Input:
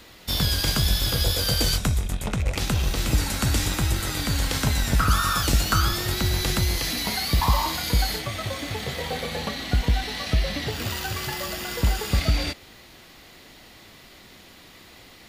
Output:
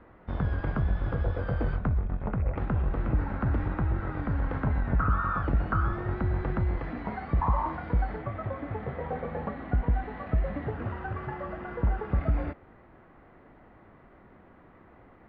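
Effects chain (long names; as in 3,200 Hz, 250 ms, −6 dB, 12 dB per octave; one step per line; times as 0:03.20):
low-pass filter 1,500 Hz 24 dB per octave
in parallel at −2.5 dB: brickwall limiter −18 dBFS, peak gain reduction 7.5 dB
on the sum: level −7.5 dB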